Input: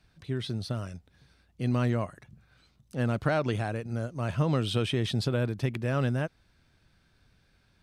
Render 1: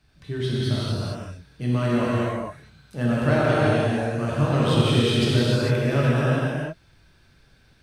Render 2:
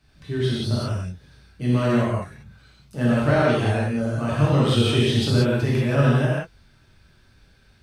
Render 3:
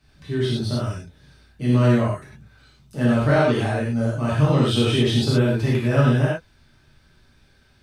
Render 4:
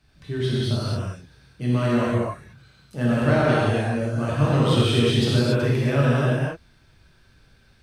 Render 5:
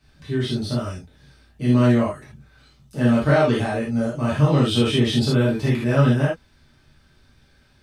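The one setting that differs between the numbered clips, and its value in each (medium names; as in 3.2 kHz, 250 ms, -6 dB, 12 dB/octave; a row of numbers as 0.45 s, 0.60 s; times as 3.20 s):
gated-style reverb, gate: 480 ms, 210 ms, 140 ms, 310 ms, 100 ms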